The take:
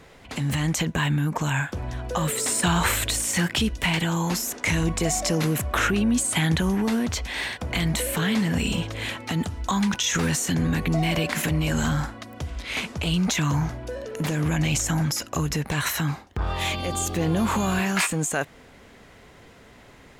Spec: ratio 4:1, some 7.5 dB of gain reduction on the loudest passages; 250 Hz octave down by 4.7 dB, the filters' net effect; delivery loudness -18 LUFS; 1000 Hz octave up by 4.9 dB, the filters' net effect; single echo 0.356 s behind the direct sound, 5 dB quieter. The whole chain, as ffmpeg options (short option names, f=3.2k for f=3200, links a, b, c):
-af "equalizer=f=250:t=o:g=-8,equalizer=f=1k:t=o:g=6.5,acompressor=threshold=-26dB:ratio=4,aecho=1:1:356:0.562,volume=10dB"